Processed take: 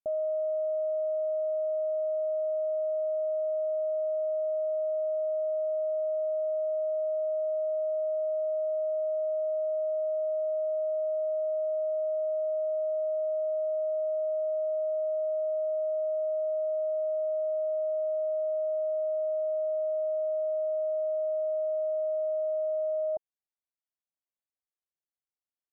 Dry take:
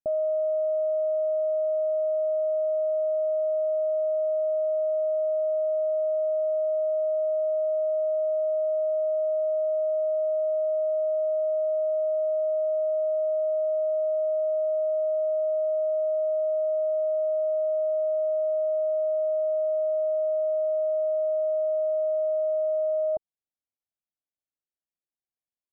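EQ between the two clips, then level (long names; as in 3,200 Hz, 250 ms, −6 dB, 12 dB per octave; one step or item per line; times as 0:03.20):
low-pass filter 1,100 Hz 12 dB per octave
low-shelf EQ 480 Hz −10 dB
0.0 dB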